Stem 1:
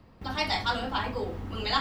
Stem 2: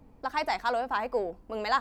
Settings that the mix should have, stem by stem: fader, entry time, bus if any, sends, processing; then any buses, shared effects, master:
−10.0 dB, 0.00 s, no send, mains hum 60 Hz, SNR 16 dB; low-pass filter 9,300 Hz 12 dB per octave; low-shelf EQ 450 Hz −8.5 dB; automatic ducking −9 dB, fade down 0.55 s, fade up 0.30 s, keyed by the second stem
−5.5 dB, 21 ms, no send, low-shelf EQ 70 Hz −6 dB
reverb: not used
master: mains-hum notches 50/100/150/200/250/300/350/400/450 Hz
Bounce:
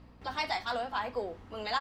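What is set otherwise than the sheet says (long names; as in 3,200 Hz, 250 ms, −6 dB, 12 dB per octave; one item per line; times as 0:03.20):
stem 1 −10.0 dB → +0.5 dB
master: missing mains-hum notches 50/100/150/200/250/300/350/400/450 Hz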